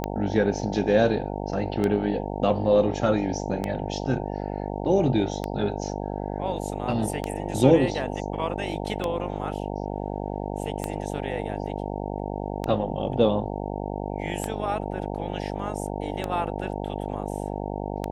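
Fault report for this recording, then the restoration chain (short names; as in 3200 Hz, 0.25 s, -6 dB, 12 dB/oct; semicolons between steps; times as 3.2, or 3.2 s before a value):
buzz 50 Hz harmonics 18 -31 dBFS
tick 33 1/3 rpm -13 dBFS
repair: de-click; de-hum 50 Hz, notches 18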